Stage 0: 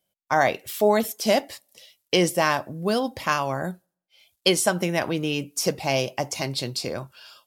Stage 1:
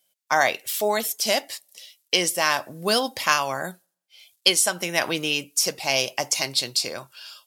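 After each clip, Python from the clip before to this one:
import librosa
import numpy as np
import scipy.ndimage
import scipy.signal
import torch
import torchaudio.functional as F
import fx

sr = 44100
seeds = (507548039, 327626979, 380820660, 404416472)

y = fx.tilt_eq(x, sr, slope=3.5)
y = fx.rider(y, sr, range_db=10, speed_s=0.5)
y = fx.high_shelf(y, sr, hz=12000.0, db=-10.5)
y = F.gain(torch.from_numpy(y), -1.0).numpy()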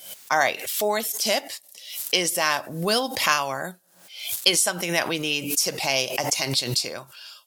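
y = fx.pre_swell(x, sr, db_per_s=80.0)
y = F.gain(torch.from_numpy(y), -1.0).numpy()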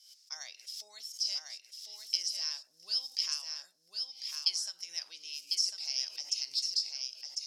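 y = fx.bandpass_q(x, sr, hz=5200.0, q=9.1)
y = y + 10.0 ** (-4.5 / 20.0) * np.pad(y, (int(1050 * sr / 1000.0), 0))[:len(y)]
y = F.gain(torch.from_numpy(y), -1.5).numpy()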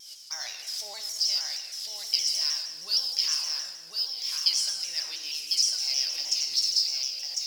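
y = fx.law_mismatch(x, sr, coded='mu')
y = fx.rev_plate(y, sr, seeds[0], rt60_s=1.4, hf_ratio=1.0, predelay_ms=0, drr_db=3.5)
y = fx.vibrato_shape(y, sr, shape='saw_down', rate_hz=6.4, depth_cents=100.0)
y = F.gain(torch.from_numpy(y), 4.5).numpy()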